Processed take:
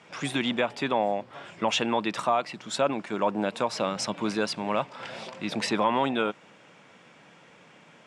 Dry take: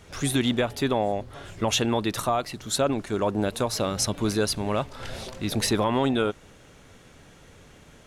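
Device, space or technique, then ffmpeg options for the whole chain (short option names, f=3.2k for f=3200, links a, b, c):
television speaker: -af "highpass=f=170:w=0.5412,highpass=f=170:w=1.3066,equalizer=f=260:t=q:w=4:g=-5,equalizer=f=400:t=q:w=4:g=-6,equalizer=f=960:t=q:w=4:g=4,equalizer=f=2.4k:t=q:w=4:g=4,equalizer=f=4.1k:t=q:w=4:g=-6,equalizer=f=6.3k:t=q:w=4:g=-8,lowpass=f=7.1k:w=0.5412,lowpass=f=7.1k:w=1.3066"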